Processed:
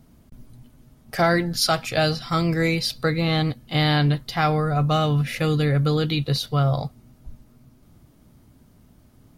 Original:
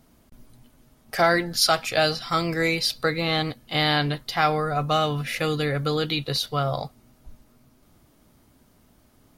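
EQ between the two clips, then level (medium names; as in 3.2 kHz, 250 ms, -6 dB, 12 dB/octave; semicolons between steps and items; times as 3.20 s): bass shelf 79 Hz +5.5 dB; peaking EQ 130 Hz +8.5 dB 2.4 oct; -1.5 dB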